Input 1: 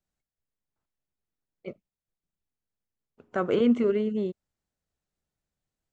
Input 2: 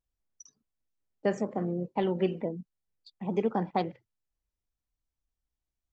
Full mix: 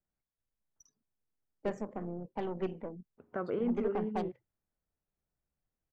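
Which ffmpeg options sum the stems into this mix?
-filter_complex "[0:a]acompressor=threshold=-39dB:ratio=1.5,lowpass=2.3k,volume=-3dB[a];[1:a]aeval=exprs='0.178*(cos(1*acos(clip(val(0)/0.178,-1,1)))-cos(1*PI/2))+0.0178*(cos(6*acos(clip(val(0)/0.178,-1,1)))-cos(6*PI/2))':c=same,adelay=400,volume=-8dB[b];[a][b]amix=inputs=2:normalize=0,equalizer=f=3.9k:w=0.93:g=-6.5"

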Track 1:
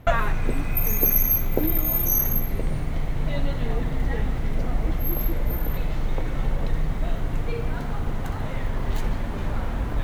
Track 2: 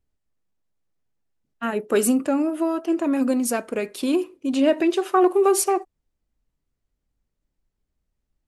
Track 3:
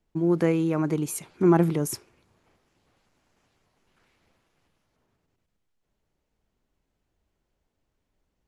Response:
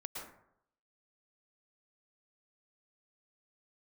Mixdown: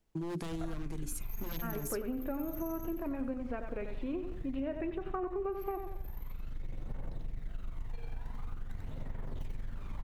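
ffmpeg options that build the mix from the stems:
-filter_complex "[0:a]aphaser=in_gain=1:out_gain=1:delay=1.3:decay=0.55:speed=0.46:type=triangular,aeval=exprs='(tanh(2.82*val(0)+0.6)-tanh(0.6))/2.82':c=same,adelay=450,volume=-17.5dB,asplit=2[a][b];[b]volume=-3.5dB[c];[1:a]lowpass=f=2.4k:w=0.5412,lowpass=f=2.4k:w=1.3066,volume=-10dB,asplit=3[d][e][f];[e]volume=-9dB[g];[2:a]highshelf=f=5.5k:g=5.5,bandreject=f=60:t=h:w=6,bandreject=f=120:t=h:w=6,bandreject=f=180:t=h:w=6,bandreject=f=240:t=h:w=6,bandreject=f=300:t=h:w=6,bandreject=f=360:t=h:w=6,aeval=exprs='0.0891*(abs(mod(val(0)/0.0891+3,4)-2)-1)':c=same,volume=-2dB[h];[f]apad=whole_len=462404[i];[a][i]sidechaincompress=threshold=-43dB:ratio=8:attack=16:release=1010[j];[j][h]amix=inputs=2:normalize=0,acrossover=split=330|3000[k][l][m];[l]acompressor=threshold=-47dB:ratio=2[n];[k][n][m]amix=inputs=3:normalize=0,alimiter=level_in=3dB:limit=-24dB:level=0:latency=1:release=351,volume=-3dB,volume=0dB[o];[c][g]amix=inputs=2:normalize=0,aecho=0:1:92|184|276|368|460:1|0.35|0.122|0.0429|0.015[p];[d][o][p]amix=inputs=3:normalize=0,acompressor=threshold=-33dB:ratio=6"

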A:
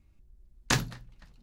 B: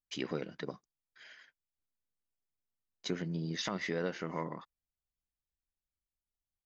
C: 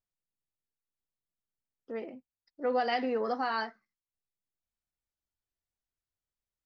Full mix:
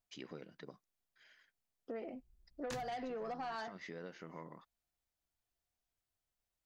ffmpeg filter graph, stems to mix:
-filter_complex "[0:a]adelay=2000,volume=-13dB[a];[1:a]volume=-11dB[b];[2:a]equalizer=f=700:t=o:w=0.2:g=8,volume=2dB[c];[b][c]amix=inputs=2:normalize=0,asoftclip=type=tanh:threshold=-23.5dB,acompressor=threshold=-33dB:ratio=6,volume=0dB[d];[a][d]amix=inputs=2:normalize=0,acompressor=threshold=-43dB:ratio=2.5"

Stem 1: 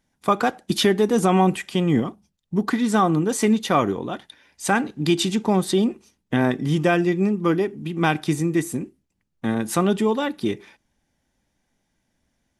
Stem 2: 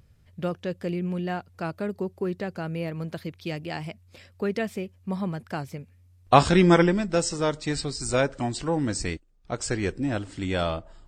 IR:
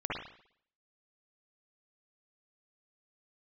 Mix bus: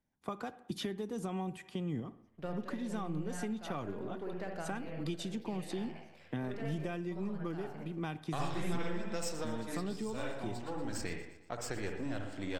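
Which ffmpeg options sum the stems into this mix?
-filter_complex "[0:a]volume=-12dB,asplit=3[a][b][c];[b]volume=-23dB[d];[1:a]aeval=exprs='if(lt(val(0),0),0.447*val(0),val(0))':c=same,lowshelf=f=350:g=-10.5,agate=range=-6dB:threshold=-58dB:ratio=16:detection=peak,adelay=2000,volume=-2dB,asplit=3[e][f][g];[f]volume=-7.5dB[h];[g]volume=-13.5dB[i];[c]apad=whole_len=576778[j];[e][j]sidechaincompress=threshold=-49dB:ratio=8:attack=44:release=404[k];[2:a]atrim=start_sample=2205[l];[d][h]amix=inputs=2:normalize=0[m];[m][l]afir=irnorm=-1:irlink=0[n];[i]aecho=0:1:119|238|357|476|595|714|833|952:1|0.52|0.27|0.141|0.0731|0.038|0.0198|0.0103[o];[a][k][n][o]amix=inputs=4:normalize=0,highshelf=f=2.3k:g=-10,acrossover=split=130|3000[p][q][r];[q]acompressor=threshold=-37dB:ratio=6[s];[p][s][r]amix=inputs=3:normalize=0"

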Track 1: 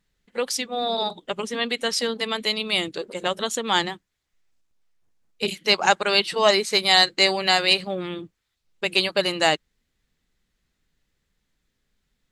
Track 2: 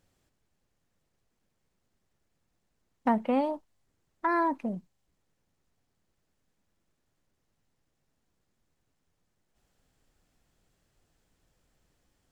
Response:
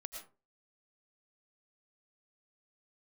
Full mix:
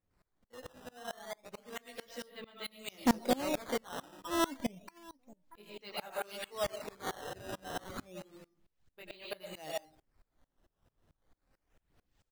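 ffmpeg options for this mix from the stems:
-filter_complex "[0:a]highshelf=f=3.1k:g=-7.5,flanger=delay=15.5:depth=4.7:speed=1.4,adelay=150,volume=0.5dB,asplit=2[a][b];[b]volume=-6dB[c];[1:a]aphaser=in_gain=1:out_gain=1:delay=3.8:decay=0.49:speed=1:type=sinusoidal,volume=2dB,asplit=4[d][e][f][g];[e]volume=-10.5dB[h];[f]volume=-21dB[i];[g]apad=whole_len=549616[j];[a][j]sidechaingate=range=-33dB:threshold=-55dB:ratio=16:detection=peak[k];[2:a]atrim=start_sample=2205[l];[c][h]amix=inputs=2:normalize=0[m];[m][l]afir=irnorm=-1:irlink=0[n];[i]aecho=0:1:634|1268|1902|2536|3170:1|0.32|0.102|0.0328|0.0105[o];[k][d][n][o]amix=inputs=4:normalize=0,acrusher=samples=11:mix=1:aa=0.000001:lfo=1:lforange=17.6:lforate=0.3,volume=18dB,asoftclip=hard,volume=-18dB,aeval=exprs='val(0)*pow(10,-26*if(lt(mod(-4.5*n/s,1),2*abs(-4.5)/1000),1-mod(-4.5*n/s,1)/(2*abs(-4.5)/1000),(mod(-4.5*n/s,1)-2*abs(-4.5)/1000)/(1-2*abs(-4.5)/1000))/20)':c=same"

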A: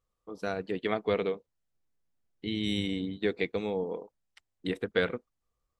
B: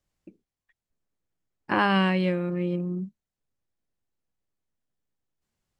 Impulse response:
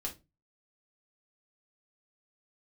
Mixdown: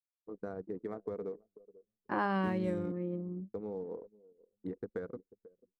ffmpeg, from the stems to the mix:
-filter_complex "[0:a]firequalizer=gain_entry='entry(120,0);entry(450,1);entry(680,-4);entry(1100,-3);entry(3200,-22);entry(8200,3)':delay=0.05:min_phase=1,acompressor=threshold=-33dB:ratio=6,acrusher=bits=9:mix=0:aa=0.000001,volume=-3dB,asplit=3[a][b][c];[a]atrim=end=2.92,asetpts=PTS-STARTPTS,afade=t=out:st=2.916:d=0.004:c=hsin[d];[b]atrim=start=2.92:end=3.54,asetpts=PTS-STARTPTS,volume=0[e];[c]atrim=start=3.54,asetpts=PTS-STARTPTS,afade=t=in:d=0.004:c=hsin[f];[d][e][f]concat=n=3:v=0:a=1,asplit=2[g][h];[h]volume=-14.5dB[i];[1:a]equalizer=f=570:w=0.3:g=7,adelay=400,volume=-14.5dB[j];[i]aecho=0:1:490|980|1470|1960:1|0.26|0.0676|0.0176[k];[g][j][k]amix=inputs=3:normalize=0,anlmdn=0.0398,equalizer=f=2.7k:t=o:w=0.77:g=-9"

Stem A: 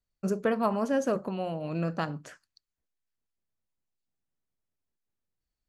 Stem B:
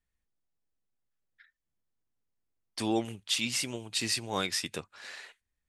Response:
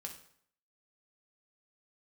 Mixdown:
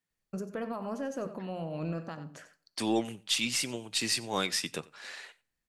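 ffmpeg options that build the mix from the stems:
-filter_complex "[0:a]alimiter=level_in=1.5dB:limit=-24dB:level=0:latency=1:release=213,volume=-1.5dB,adelay=100,volume=-4dB,asplit=3[a][b][c];[b]volume=-7dB[d];[c]volume=-10dB[e];[1:a]highpass=f=120:w=0.5412,highpass=f=120:w=1.3066,volume=0dB,asplit=3[f][g][h];[g]volume=-16dB[i];[h]volume=-22dB[j];[2:a]atrim=start_sample=2205[k];[d][i]amix=inputs=2:normalize=0[l];[l][k]afir=irnorm=-1:irlink=0[m];[e][j]amix=inputs=2:normalize=0,aecho=0:1:92:1[n];[a][f][m][n]amix=inputs=4:normalize=0,aeval=exprs='0.188*(cos(1*acos(clip(val(0)/0.188,-1,1)))-cos(1*PI/2))+0.00237*(cos(6*acos(clip(val(0)/0.188,-1,1)))-cos(6*PI/2))':c=same"

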